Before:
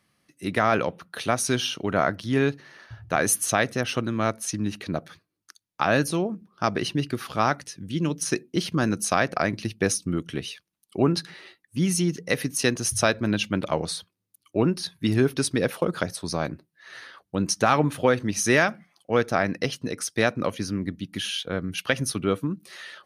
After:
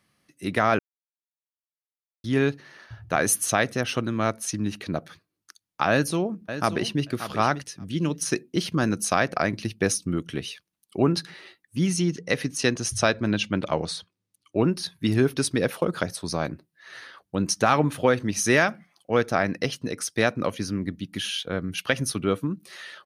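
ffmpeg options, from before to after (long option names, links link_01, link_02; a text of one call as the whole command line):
ffmpeg -i in.wav -filter_complex "[0:a]asplit=2[link_01][link_02];[link_02]afade=type=in:start_time=5.9:duration=0.01,afade=type=out:start_time=7.04:duration=0.01,aecho=0:1:580|1160:0.281838|0.0281838[link_03];[link_01][link_03]amix=inputs=2:normalize=0,asettb=1/sr,asplit=3[link_04][link_05][link_06];[link_04]atrim=end=11.874[link_07];[link_05]atrim=start=11.87:end=14.58,asetpts=PTS-STARTPTS,afade=type=in:duration=0.004:curve=qsin,afade=type=out:start_time=2.706:duration=0.004:curve=qsin,lowpass=7900[link_08];[link_06]atrim=start=14.576[link_09];[link_07][link_08]acrossfade=duration=0.004:curve1=hsin:curve2=qsin[link_10];[link_10][link_09]acrossfade=duration=0.004:curve1=qsin:curve2=hsin,asplit=3[link_11][link_12][link_13];[link_11]atrim=end=0.79,asetpts=PTS-STARTPTS,afade=type=out:start_time=0.786:duration=0.004:curve=hsin[link_14];[link_12]atrim=start=0.79:end=2.24,asetpts=PTS-STARTPTS,volume=0[link_15];[link_13]atrim=start=2.24,asetpts=PTS-STARTPTS,afade=type=in:duration=0.004:curve=hsin[link_16];[link_14][link_15][link_16]concat=n=3:v=0:a=1" out.wav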